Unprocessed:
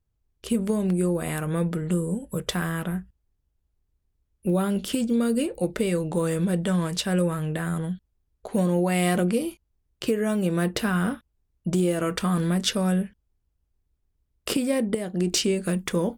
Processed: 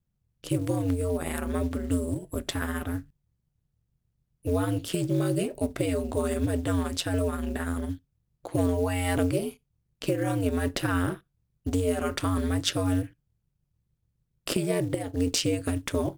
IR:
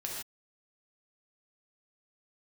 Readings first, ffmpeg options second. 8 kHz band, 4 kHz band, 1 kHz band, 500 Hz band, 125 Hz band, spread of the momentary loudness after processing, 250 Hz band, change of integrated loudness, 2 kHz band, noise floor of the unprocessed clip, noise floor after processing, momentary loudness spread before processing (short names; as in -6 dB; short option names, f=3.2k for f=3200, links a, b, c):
-3.0 dB, -2.5 dB, -2.5 dB, -2.5 dB, -2.0 dB, 7 LU, -4.0 dB, -3.0 dB, -3.0 dB, -75 dBFS, -78 dBFS, 7 LU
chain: -filter_complex "[0:a]acrusher=bits=7:mode=log:mix=0:aa=0.000001,aeval=exprs='val(0)*sin(2*PI*90*n/s)':c=same,asplit=2[a][b];[1:a]atrim=start_sample=2205,asetrate=79380,aresample=44100[c];[b][c]afir=irnorm=-1:irlink=0,volume=-23dB[d];[a][d]amix=inputs=2:normalize=0"